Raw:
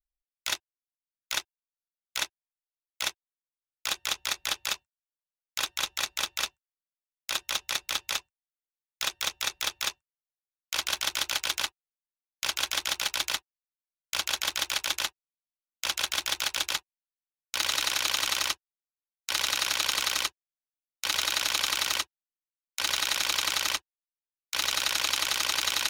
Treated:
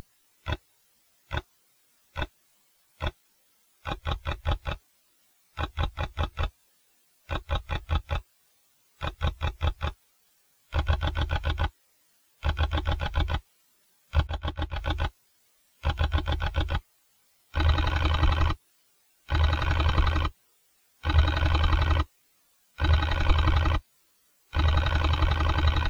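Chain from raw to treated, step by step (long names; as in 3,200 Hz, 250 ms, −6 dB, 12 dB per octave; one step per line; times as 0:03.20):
spectral tilt −4.5 dB per octave
in parallel at −3 dB: bit-depth reduction 6 bits, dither triangular
0:14.27–0:14.79: on the sum: downward expander −26 dBFS
every bin expanded away from the loudest bin 2.5 to 1
level +3.5 dB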